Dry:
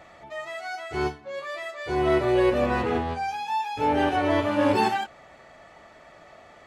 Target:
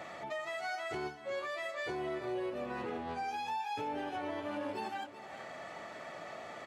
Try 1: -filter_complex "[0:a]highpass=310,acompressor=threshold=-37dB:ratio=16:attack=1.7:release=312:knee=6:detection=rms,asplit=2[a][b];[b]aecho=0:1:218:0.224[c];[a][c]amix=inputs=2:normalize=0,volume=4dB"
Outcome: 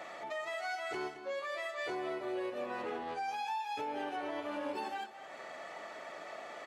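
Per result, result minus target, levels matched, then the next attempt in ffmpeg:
125 Hz band -9.5 dB; echo 0.162 s early
-filter_complex "[0:a]highpass=140,acompressor=threshold=-37dB:ratio=16:attack=1.7:release=312:knee=6:detection=rms,asplit=2[a][b];[b]aecho=0:1:218:0.224[c];[a][c]amix=inputs=2:normalize=0,volume=4dB"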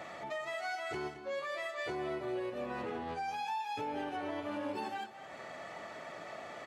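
echo 0.162 s early
-filter_complex "[0:a]highpass=140,acompressor=threshold=-37dB:ratio=16:attack=1.7:release=312:knee=6:detection=rms,asplit=2[a][b];[b]aecho=0:1:380:0.224[c];[a][c]amix=inputs=2:normalize=0,volume=4dB"

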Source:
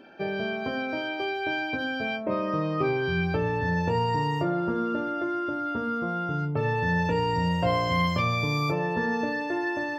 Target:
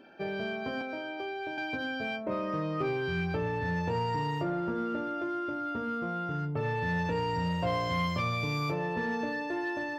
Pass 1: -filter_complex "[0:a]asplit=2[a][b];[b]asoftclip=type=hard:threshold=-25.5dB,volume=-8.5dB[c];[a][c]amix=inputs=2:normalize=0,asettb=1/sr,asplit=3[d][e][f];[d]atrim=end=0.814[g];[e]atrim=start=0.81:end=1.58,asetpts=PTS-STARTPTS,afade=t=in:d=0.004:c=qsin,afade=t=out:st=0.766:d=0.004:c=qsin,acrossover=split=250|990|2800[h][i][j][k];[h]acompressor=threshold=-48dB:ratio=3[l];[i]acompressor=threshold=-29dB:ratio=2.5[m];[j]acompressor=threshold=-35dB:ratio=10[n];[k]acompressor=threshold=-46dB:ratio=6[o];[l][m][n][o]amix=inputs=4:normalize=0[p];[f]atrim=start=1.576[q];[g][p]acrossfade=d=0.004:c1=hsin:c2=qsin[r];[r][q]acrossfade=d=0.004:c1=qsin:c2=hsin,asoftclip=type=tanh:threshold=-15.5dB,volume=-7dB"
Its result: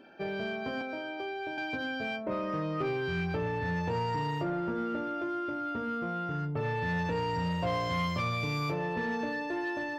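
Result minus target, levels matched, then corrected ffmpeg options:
soft clip: distortion +11 dB
-filter_complex "[0:a]asplit=2[a][b];[b]asoftclip=type=hard:threshold=-25.5dB,volume=-8.5dB[c];[a][c]amix=inputs=2:normalize=0,asettb=1/sr,asplit=3[d][e][f];[d]atrim=end=0.814[g];[e]atrim=start=0.81:end=1.58,asetpts=PTS-STARTPTS,afade=t=in:d=0.004:c=qsin,afade=t=out:st=0.766:d=0.004:c=qsin,acrossover=split=250|990|2800[h][i][j][k];[h]acompressor=threshold=-48dB:ratio=3[l];[i]acompressor=threshold=-29dB:ratio=2.5[m];[j]acompressor=threshold=-35dB:ratio=10[n];[k]acompressor=threshold=-46dB:ratio=6[o];[l][m][n][o]amix=inputs=4:normalize=0[p];[f]atrim=start=1.576[q];[g][p]acrossfade=d=0.004:c1=hsin:c2=qsin[r];[r][q]acrossfade=d=0.004:c1=qsin:c2=hsin,asoftclip=type=tanh:threshold=-9.5dB,volume=-7dB"

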